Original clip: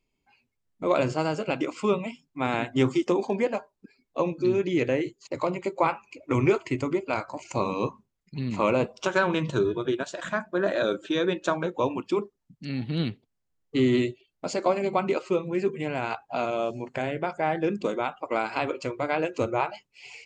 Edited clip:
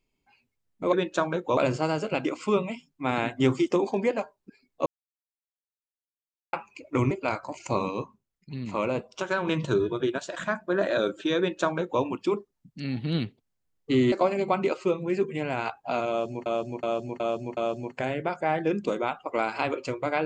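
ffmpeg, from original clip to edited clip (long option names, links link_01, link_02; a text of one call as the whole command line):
ffmpeg -i in.wav -filter_complex "[0:a]asplit=13[link_01][link_02][link_03][link_04][link_05][link_06][link_07][link_08][link_09][link_10][link_11][link_12][link_13];[link_01]atrim=end=0.932[link_14];[link_02]atrim=start=11.228:end=11.872[link_15];[link_03]atrim=start=0.928:end=4.22,asetpts=PTS-STARTPTS,afade=type=out:start_time=3.288:duration=0.004:curve=hsin[link_16];[link_04]atrim=start=4.22:end=5.89,asetpts=PTS-STARTPTS,volume=0[link_17];[link_05]atrim=start=5.89:end=6.472,asetpts=PTS-STARTPTS,afade=type=in:duration=0.004:curve=hsin[link_18];[link_06]atrim=start=6.958:end=7.762[link_19];[link_07]atrim=start=7.758:end=9.322,asetpts=PTS-STARTPTS,volume=-4.5dB[link_20];[link_08]atrim=start=9.318:end=13.972[link_21];[link_09]atrim=start=14.568:end=16.912[link_22];[link_10]atrim=start=16.538:end=16.912[link_23];[link_11]atrim=start=16.538:end=16.912[link_24];[link_12]atrim=start=16.538:end=16.912[link_25];[link_13]atrim=start=16.538[link_26];[link_14][link_15]acrossfade=duration=0.004:curve1=hsin:curve2=hsin[link_27];[link_16][link_17][link_18]concat=n=3:v=0:a=1[link_28];[link_27][link_28]acrossfade=duration=0.004:curve1=hsin:curve2=hsin[link_29];[link_29][link_19]acrossfade=duration=0.004:curve1=hsin:curve2=hsin[link_30];[link_30][link_20]acrossfade=duration=0.004:curve1=hsin:curve2=hsin[link_31];[link_31][link_21]acrossfade=duration=0.004:curve1=hsin:curve2=hsin[link_32];[link_32][link_22]acrossfade=duration=0.004:curve1=hsin:curve2=hsin[link_33];[link_33][link_23]acrossfade=duration=0.004:curve1=hsin:curve2=hsin[link_34];[link_34][link_24]acrossfade=duration=0.004:curve1=hsin:curve2=hsin[link_35];[link_35][link_25]acrossfade=duration=0.004:curve1=hsin:curve2=hsin[link_36];[link_36][link_26]acrossfade=duration=0.004:curve1=hsin:curve2=hsin" out.wav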